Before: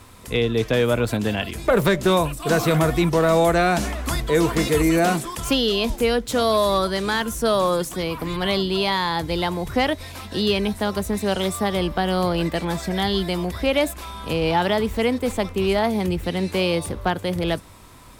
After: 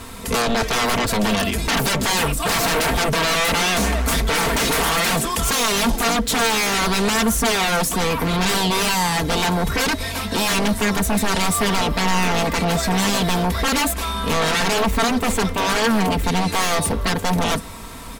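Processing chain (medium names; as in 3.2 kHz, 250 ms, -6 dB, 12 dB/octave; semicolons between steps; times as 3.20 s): sine folder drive 15 dB, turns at -8.5 dBFS; comb 4.4 ms, depth 51%; trim -8.5 dB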